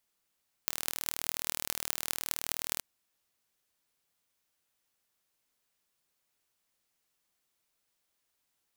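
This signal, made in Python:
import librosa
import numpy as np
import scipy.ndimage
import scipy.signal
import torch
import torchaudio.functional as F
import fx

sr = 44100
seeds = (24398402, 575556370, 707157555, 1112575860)

y = fx.impulse_train(sr, length_s=2.12, per_s=39.2, accent_every=8, level_db=-1.5)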